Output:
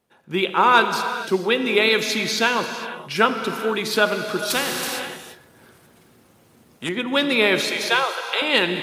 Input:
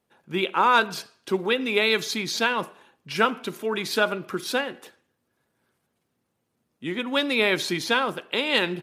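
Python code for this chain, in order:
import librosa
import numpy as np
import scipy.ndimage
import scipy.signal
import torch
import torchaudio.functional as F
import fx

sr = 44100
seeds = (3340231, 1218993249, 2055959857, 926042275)

y = fx.highpass(x, sr, hz=520.0, slope=24, at=(7.61, 8.42))
y = fx.rev_gated(y, sr, seeds[0], gate_ms=490, shape='flat', drr_db=7.0)
y = fx.spectral_comp(y, sr, ratio=2.0, at=(4.5, 6.89))
y = y * 10.0 ** (3.5 / 20.0)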